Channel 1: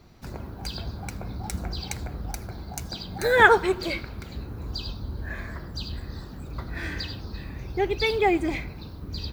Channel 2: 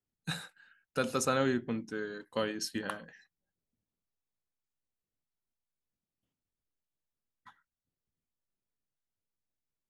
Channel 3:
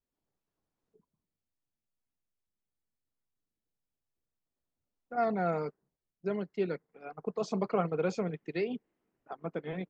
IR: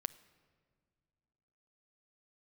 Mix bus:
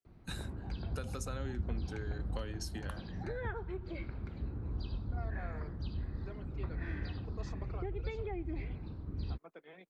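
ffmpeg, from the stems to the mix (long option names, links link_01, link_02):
-filter_complex "[0:a]lowpass=2500,lowshelf=frequency=270:gain=8,adelay=50,volume=-11dB[link_01];[1:a]bass=frequency=250:gain=-4,treble=frequency=4000:gain=3,volume=-5dB[link_02];[2:a]highpass=frequency=1000:poles=1,alimiter=level_in=4dB:limit=-24dB:level=0:latency=1:release=214,volume=-4dB,volume=-10dB[link_03];[link_01][link_02][link_03]amix=inputs=3:normalize=0,equalizer=frequency=320:width_type=o:width=0.77:gain=2.5,acrossover=split=140[link_04][link_05];[link_05]acompressor=threshold=-40dB:ratio=8[link_06];[link_04][link_06]amix=inputs=2:normalize=0"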